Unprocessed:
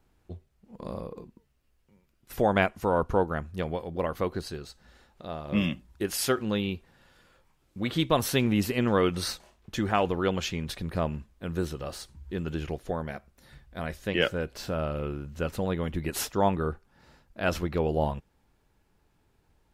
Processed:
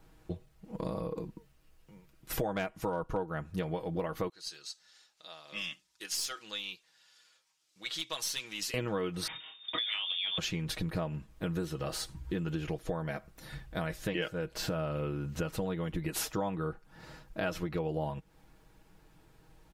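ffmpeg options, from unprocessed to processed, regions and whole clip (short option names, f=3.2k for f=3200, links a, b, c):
-filter_complex "[0:a]asettb=1/sr,asplit=3[a][b][c];[a]atrim=end=2.504[d];[b]atrim=start=2.5:end=3.17,asetpts=PTS-STARTPTS,afade=t=in:d=0.004:c=qsin,afade=t=out:st=0.666:d=0.004:c=qsin,asoftclip=type=hard:threshold=-14dB,acompressor=mode=upward:threshold=-40dB:ratio=2.5:attack=3.2:release=140:knee=2.83:detection=peak[e];[c]atrim=start=3.166[f];[d][e]acrossfade=d=0.004:c1=hsin:c2=qsin[g];[g][f]acrossfade=d=0.004:c1=qsin:c2=hsin,asettb=1/sr,asplit=3[h][i][j];[h]atrim=end=4.294[k];[i]atrim=start=4.29:end=8.74,asetpts=PTS-STARTPTS,afade=t=in:d=0.004:c=qsin,afade=t=out:st=4.446:d=0.004:c=qsin,bandpass=f=5.7k:t=q:w=1.4,aeval=exprs='(tanh(25.1*val(0)+0.2)-tanh(0.2))/25.1':c=same[l];[j]atrim=start=8.736[m];[k][l]acrossfade=d=0.004:c1=hsin:c2=qsin[n];[n][m]acrossfade=d=0.004:c1=qsin:c2=hsin,asettb=1/sr,asplit=3[o][p][q];[o]atrim=end=9.274[r];[p]atrim=start=9.27:end=10.38,asetpts=PTS-STARTPTS,afade=t=in:d=0.004:c=qsin,afade=t=out:st=1.106:d=0.004:c=qsin,lowpass=f=3.1k:t=q:w=0.5098,lowpass=f=3.1k:t=q:w=0.6013,lowpass=f=3.1k:t=q:w=0.9,lowpass=f=3.1k:t=q:w=2.563,afreqshift=-3700,acompressor=threshold=-27dB:ratio=6:attack=3.2:release=140:knee=1:detection=peak,asplit=2[s][t];[t]adelay=25,volume=-9.5dB[u];[s][u]amix=inputs=2:normalize=0,atrim=end_sample=48951[v];[q]atrim=start=10.376[w];[r][v]acrossfade=d=0.004:c1=hsin:c2=qsin[x];[x][w]acrossfade=d=0.004:c1=qsin:c2=hsin,aecho=1:1:6.3:0.61,acompressor=threshold=-38dB:ratio=6,volume=6dB"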